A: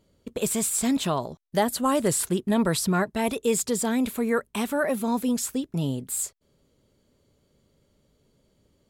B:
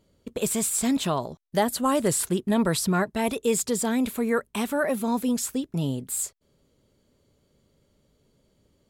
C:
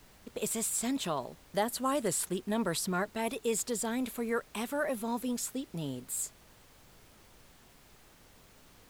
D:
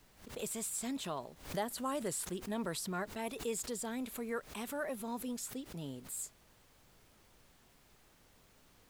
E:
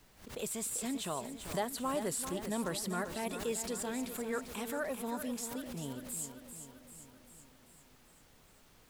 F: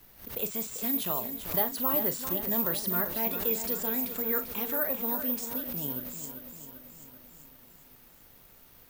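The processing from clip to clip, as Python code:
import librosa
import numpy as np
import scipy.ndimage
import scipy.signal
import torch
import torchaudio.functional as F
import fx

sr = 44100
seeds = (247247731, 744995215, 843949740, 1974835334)

y1 = x
y2 = fx.low_shelf(y1, sr, hz=160.0, db=-10.0)
y2 = fx.dmg_noise_colour(y2, sr, seeds[0], colour='pink', level_db=-52.0)
y2 = y2 * 10.0 ** (-6.5 / 20.0)
y3 = fx.pre_swell(y2, sr, db_per_s=130.0)
y3 = y3 * 10.0 ** (-6.5 / 20.0)
y4 = fx.echo_feedback(y3, sr, ms=392, feedback_pct=58, wet_db=-9.5)
y4 = y4 * 10.0 ** (1.5 / 20.0)
y5 = fx.doubler(y4, sr, ms=40.0, db=-11)
y5 = (np.kron(scipy.signal.resample_poly(y5, 1, 3), np.eye(3)[0]) * 3)[:len(y5)]
y5 = y5 * 10.0 ** (2.5 / 20.0)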